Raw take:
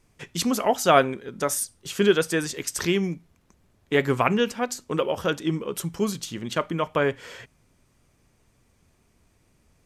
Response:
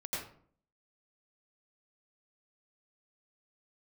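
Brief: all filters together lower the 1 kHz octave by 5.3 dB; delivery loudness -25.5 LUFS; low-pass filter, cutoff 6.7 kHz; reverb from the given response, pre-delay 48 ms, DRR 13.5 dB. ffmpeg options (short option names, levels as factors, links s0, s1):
-filter_complex "[0:a]lowpass=6700,equalizer=f=1000:t=o:g=-8,asplit=2[s0][s1];[1:a]atrim=start_sample=2205,adelay=48[s2];[s1][s2]afir=irnorm=-1:irlink=0,volume=0.158[s3];[s0][s3]amix=inputs=2:normalize=0,volume=1.12"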